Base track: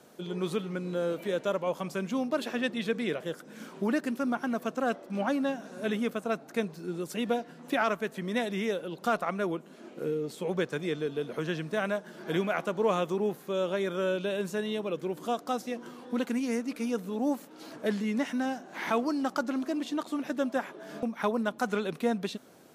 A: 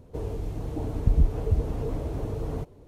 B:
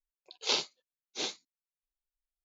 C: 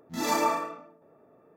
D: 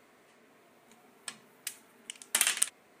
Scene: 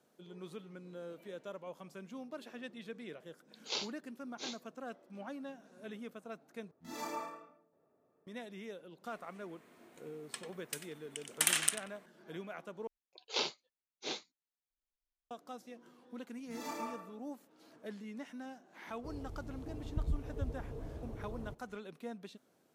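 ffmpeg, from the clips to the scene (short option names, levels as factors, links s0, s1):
-filter_complex "[2:a]asplit=2[s0][s1];[3:a]asplit=2[s2][s3];[0:a]volume=0.158[s4];[4:a]asplit=2[s5][s6];[s6]adelay=93,lowpass=f=2000:p=1,volume=0.631,asplit=2[s7][s8];[s8]adelay=93,lowpass=f=2000:p=1,volume=0.46,asplit=2[s9][s10];[s10]adelay=93,lowpass=f=2000:p=1,volume=0.46,asplit=2[s11][s12];[s12]adelay=93,lowpass=f=2000:p=1,volume=0.46,asplit=2[s13][s14];[s14]adelay=93,lowpass=f=2000:p=1,volume=0.46,asplit=2[s15][s16];[s16]adelay=93,lowpass=f=2000:p=1,volume=0.46[s17];[s5][s7][s9][s11][s13][s15][s17]amix=inputs=7:normalize=0[s18];[s1]lowpass=f=3500:p=1[s19];[s4]asplit=3[s20][s21][s22];[s20]atrim=end=6.714[s23];[s2]atrim=end=1.56,asetpts=PTS-STARTPTS,volume=0.168[s24];[s21]atrim=start=8.266:end=12.874[s25];[s19]atrim=end=2.44,asetpts=PTS-STARTPTS,volume=0.75[s26];[s22]atrim=start=15.306[s27];[s0]atrim=end=2.44,asetpts=PTS-STARTPTS,volume=0.376,afade=t=in:d=0.004:c=hsin,afade=t=out:st=2.436:d=0.004:c=hsin,adelay=3230[s28];[s18]atrim=end=3,asetpts=PTS-STARTPTS,volume=0.708,afade=t=in:d=0.004:c=hsin,afade=t=out:st=2.996:d=0.004:c=hsin,adelay=399546S[s29];[s3]atrim=end=1.56,asetpts=PTS-STARTPTS,volume=0.15,afade=t=in:d=0.004:c=hsin,afade=t=out:st=1.556:d=0.004:c=hsin,adelay=16370[s30];[1:a]atrim=end=2.87,asetpts=PTS-STARTPTS,volume=0.188,afade=t=in:d=0.004:c=hsin,afade=t=out:st=2.866:d=0.004:c=hsin,adelay=18900[s31];[s23][s24]acrossfade=d=0.004:c1=hsin:c2=hsin[s32];[s32][s25]acrossfade=d=0.004:c1=hsin:c2=hsin[s33];[s33][s26]acrossfade=d=0.004:c1=hsin:c2=hsin[s34];[s34][s27]acrossfade=d=0.004:c1=hsin:c2=hsin[s35];[s35][s28][s29][s30][s31]amix=inputs=5:normalize=0"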